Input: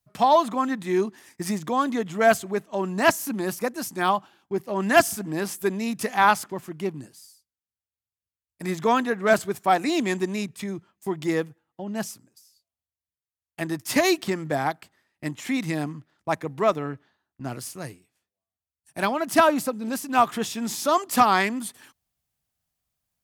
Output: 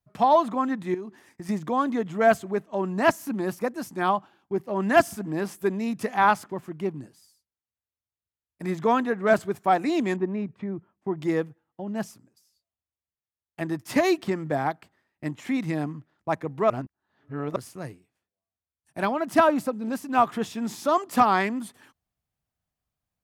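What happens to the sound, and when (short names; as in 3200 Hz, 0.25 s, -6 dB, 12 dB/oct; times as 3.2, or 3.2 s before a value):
0.94–1.49 compressor 4:1, threshold -34 dBFS
10.16–11.17 Bessel low-pass 1400 Hz
16.7–17.56 reverse
whole clip: high shelf 2700 Hz -11 dB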